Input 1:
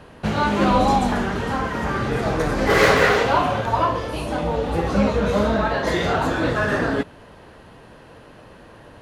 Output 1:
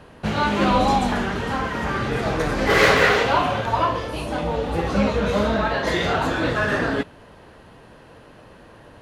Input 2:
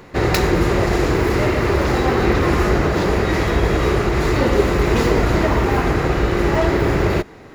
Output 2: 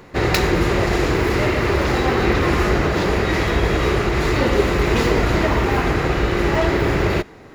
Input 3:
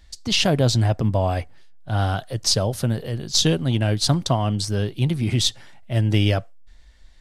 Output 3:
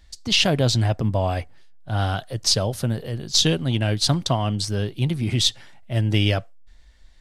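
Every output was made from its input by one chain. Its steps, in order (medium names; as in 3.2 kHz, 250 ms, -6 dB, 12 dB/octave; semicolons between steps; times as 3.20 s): dynamic bell 2.9 kHz, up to +4 dB, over -34 dBFS, Q 0.78; trim -1.5 dB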